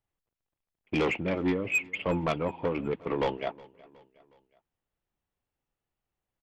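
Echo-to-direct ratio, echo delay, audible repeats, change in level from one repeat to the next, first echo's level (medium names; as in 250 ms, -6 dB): -22.0 dB, 366 ms, 2, -6.0 dB, -23.0 dB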